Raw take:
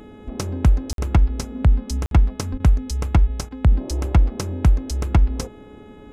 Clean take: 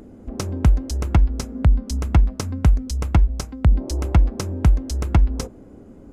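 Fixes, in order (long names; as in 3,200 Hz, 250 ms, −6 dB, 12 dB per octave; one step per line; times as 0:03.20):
hum removal 423 Hz, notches 9
high-pass at the plosives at 0:02.51
repair the gap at 0:00.93/0:02.06, 52 ms
repair the gap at 0:02.58/0:03.49, 18 ms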